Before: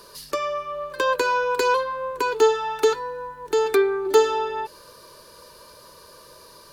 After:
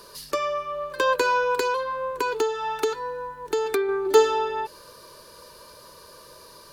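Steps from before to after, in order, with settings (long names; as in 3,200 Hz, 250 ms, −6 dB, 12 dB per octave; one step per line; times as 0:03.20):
0:01.59–0:03.89: downward compressor 6 to 1, threshold −21 dBFS, peak gain reduction 9 dB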